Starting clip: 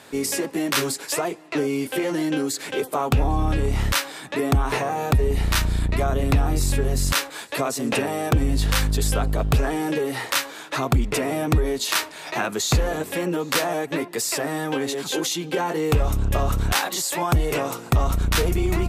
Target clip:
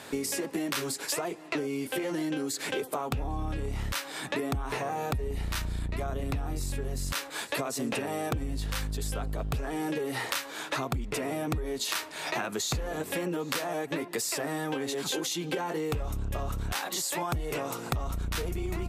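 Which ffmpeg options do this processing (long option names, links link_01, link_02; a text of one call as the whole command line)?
ffmpeg -i in.wav -af "acompressor=threshold=-30dB:ratio=10,volume=1.5dB" out.wav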